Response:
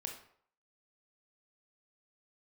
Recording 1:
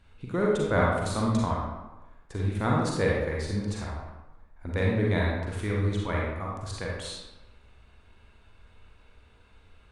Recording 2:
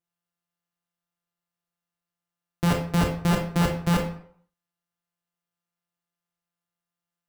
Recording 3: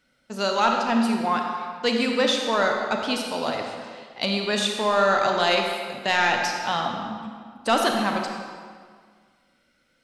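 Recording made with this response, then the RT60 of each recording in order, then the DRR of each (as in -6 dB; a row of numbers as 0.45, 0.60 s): 2; 1.1, 0.60, 1.8 s; -4.0, 2.5, 2.0 dB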